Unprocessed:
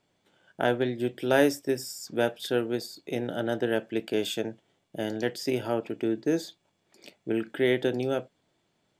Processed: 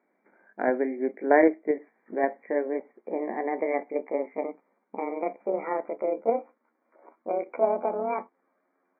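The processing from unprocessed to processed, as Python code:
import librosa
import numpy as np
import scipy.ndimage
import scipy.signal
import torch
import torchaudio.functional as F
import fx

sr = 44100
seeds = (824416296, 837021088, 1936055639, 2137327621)

p1 = fx.pitch_glide(x, sr, semitones=10.5, runs='starting unshifted')
p2 = fx.brickwall_bandpass(p1, sr, low_hz=190.0, high_hz=2400.0)
p3 = fx.level_steps(p2, sr, step_db=23)
p4 = p2 + F.gain(torch.from_numpy(p3), -1.0).numpy()
p5 = fx.dynamic_eq(p4, sr, hz=1300.0, q=1.2, threshold_db=-38.0, ratio=4.0, max_db=-5)
y = F.gain(torch.from_numpy(p5), 1.0).numpy()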